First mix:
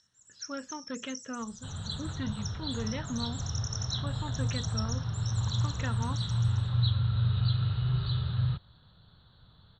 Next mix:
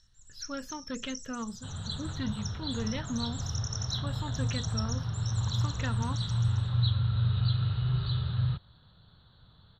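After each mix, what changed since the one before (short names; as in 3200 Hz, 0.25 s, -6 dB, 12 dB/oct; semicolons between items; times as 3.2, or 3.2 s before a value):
speech: remove BPF 190–3100 Hz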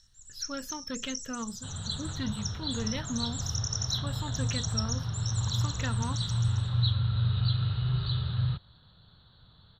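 master: add high shelf 6400 Hz +12 dB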